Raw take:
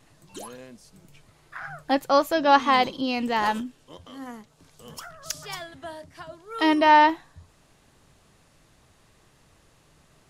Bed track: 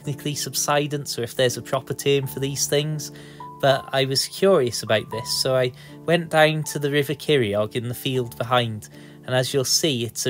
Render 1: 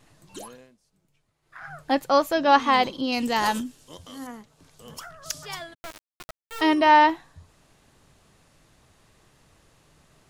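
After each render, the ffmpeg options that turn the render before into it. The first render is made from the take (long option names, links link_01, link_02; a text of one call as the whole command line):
ffmpeg -i in.wav -filter_complex "[0:a]asettb=1/sr,asplit=3[link_01][link_02][link_03];[link_01]atrim=end=3.124[link_04];[link_02]atrim=start=3.12:end=4.27,asetpts=PTS-STARTPTS,afade=type=in:duration=0.004:curve=qsin,afade=type=out:start_time=1.146:duration=0.004:curve=qsin,bass=frequency=250:gain=2,treble=frequency=4000:gain=11[link_05];[link_03]atrim=start=4.266[link_06];[link_04][link_05]acrossfade=duration=0.004:curve1=hsin:curve2=qsin[link_07];[link_07][link_06]acrossfade=duration=0.004:curve1=qsin:curve2=hsin,asplit=3[link_08][link_09][link_10];[link_08]afade=type=out:start_time=5.73:duration=0.02[link_11];[link_09]acrusher=bits=3:dc=4:mix=0:aa=0.000001,afade=type=in:start_time=5.73:duration=0.02,afade=type=out:start_time=6.6:duration=0.02[link_12];[link_10]afade=type=in:start_time=6.6:duration=0.02[link_13];[link_11][link_12][link_13]amix=inputs=3:normalize=0,asplit=3[link_14][link_15][link_16];[link_14]atrim=end=0.76,asetpts=PTS-STARTPTS,afade=type=out:start_time=0.38:duration=0.38:silence=0.141254[link_17];[link_15]atrim=start=0.76:end=1.41,asetpts=PTS-STARTPTS,volume=-17dB[link_18];[link_16]atrim=start=1.41,asetpts=PTS-STARTPTS,afade=type=in:duration=0.38:silence=0.141254[link_19];[link_17][link_18][link_19]concat=n=3:v=0:a=1" out.wav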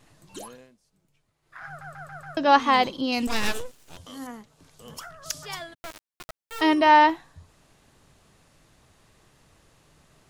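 ffmpeg -i in.wav -filter_complex "[0:a]asettb=1/sr,asplit=3[link_01][link_02][link_03];[link_01]atrim=end=3.274[link_04];[link_02]atrim=start=3.27:end=3.97,asetpts=PTS-STARTPTS,afade=type=in:duration=0.004:curve=qsin,afade=type=out:start_time=0.696:duration=0.004:curve=qsin,aeval=exprs='abs(val(0))':channel_layout=same[link_05];[link_03]atrim=start=3.966[link_06];[link_04][link_05]acrossfade=duration=0.004:curve1=hsin:curve2=qsin[link_07];[link_07][link_06]acrossfade=duration=0.004:curve1=qsin:curve2=hsin,asplit=6[link_08][link_09][link_10][link_11][link_12][link_13];[link_08]atrim=end=1.812[link_14];[link_09]atrim=start=1.668:end=1.812[link_15];[link_10]atrim=start=1.668:end=1.812[link_16];[link_11]atrim=start=1.668:end=1.812[link_17];[link_12]atrim=start=1.668:end=1.812[link_18];[link_13]atrim=start=2.368[link_19];[link_14][link_15]acrossfade=duration=0.004:curve1=hsin:curve2=hsin[link_20];[link_20][link_16]acrossfade=duration=0.004:curve1=hsin:curve2=hsin[link_21];[link_21][link_17]acrossfade=duration=0.004:curve1=hsin:curve2=hsin[link_22];[link_22][link_18]acrossfade=duration=0.004:curve1=hsin:curve2=hsin[link_23];[link_23][link_19]acrossfade=duration=0.004:curve1=hsin:curve2=hsin" out.wav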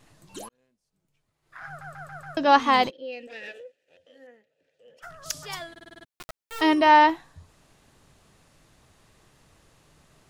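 ffmpeg -i in.wav -filter_complex "[0:a]asplit=3[link_01][link_02][link_03];[link_01]afade=type=out:start_time=2.89:duration=0.02[link_04];[link_02]asplit=3[link_05][link_06][link_07];[link_05]bandpass=frequency=530:width_type=q:width=8,volume=0dB[link_08];[link_06]bandpass=frequency=1840:width_type=q:width=8,volume=-6dB[link_09];[link_07]bandpass=frequency=2480:width_type=q:width=8,volume=-9dB[link_10];[link_08][link_09][link_10]amix=inputs=3:normalize=0,afade=type=in:start_time=2.89:duration=0.02,afade=type=out:start_time=5.02:duration=0.02[link_11];[link_03]afade=type=in:start_time=5.02:duration=0.02[link_12];[link_04][link_11][link_12]amix=inputs=3:normalize=0,asplit=9[link_13][link_14][link_15][link_16][link_17][link_18][link_19][link_20][link_21];[link_13]atrim=end=0.49,asetpts=PTS-STARTPTS,afade=type=out:start_time=0.486:duration=0.004:curve=hsin[link_22];[link_14]atrim=start=0.49:end=5.762,asetpts=PTS-STARTPTS,afade=type=in:duration=1.14[link_23];[link_15]atrim=start=5.708:end=5.762[link_24];[link_16]atrim=start=5.708:end=5.762[link_25];[link_17]atrim=start=5.708:end=5.762[link_26];[link_18]atrim=start=5.708:end=5.762[link_27];[link_19]atrim=start=5.708:end=5.762[link_28];[link_20]atrim=start=5.708:end=5.762[link_29];[link_21]atrim=start=6.058[link_30];[link_22][link_23]concat=n=2:v=0:a=1[link_31];[link_31][link_24]acrossfade=duration=0.004:curve1=hsin:curve2=hsin[link_32];[link_32][link_25]acrossfade=duration=0.004:curve1=hsin:curve2=hsin[link_33];[link_33][link_26]acrossfade=duration=0.004:curve1=hsin:curve2=hsin[link_34];[link_34][link_27]acrossfade=duration=0.004:curve1=hsin:curve2=hsin[link_35];[link_35][link_28]acrossfade=duration=0.004:curve1=hsin:curve2=hsin[link_36];[link_36][link_29]acrossfade=duration=0.004:curve1=hsin:curve2=hsin[link_37];[link_37][link_30]acrossfade=duration=0.004:curve1=hsin:curve2=hsin" out.wav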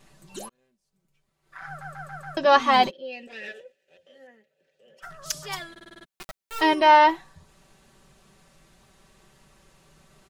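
ffmpeg -i in.wav -af "aecho=1:1:5.2:0.67" out.wav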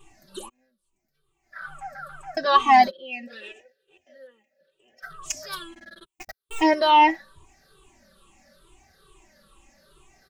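ffmpeg -i in.wav -af "afftfilt=real='re*pow(10,17/40*sin(2*PI*(0.66*log(max(b,1)*sr/1024/100)/log(2)-(-2.3)*(pts-256)/sr)))':imag='im*pow(10,17/40*sin(2*PI*(0.66*log(max(b,1)*sr/1024/100)/log(2)-(-2.3)*(pts-256)/sr)))':win_size=1024:overlap=0.75,flanger=delay=2.5:depth=1.2:regen=-1:speed=0.78:shape=sinusoidal" out.wav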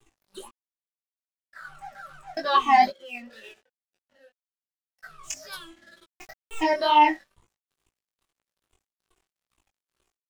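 ffmpeg -i in.wav -af "aeval=exprs='sgn(val(0))*max(abs(val(0))-0.00299,0)':channel_layout=same,flanger=delay=16.5:depth=5.1:speed=2" out.wav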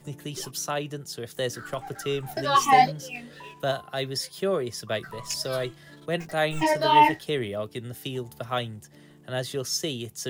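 ffmpeg -i in.wav -i bed.wav -filter_complex "[1:a]volume=-9dB[link_01];[0:a][link_01]amix=inputs=2:normalize=0" out.wav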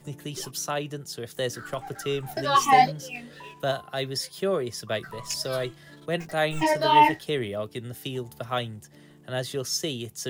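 ffmpeg -i in.wav -af anull out.wav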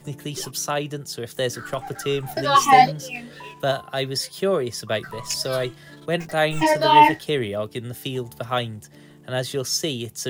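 ffmpeg -i in.wav -af "volume=4.5dB" out.wav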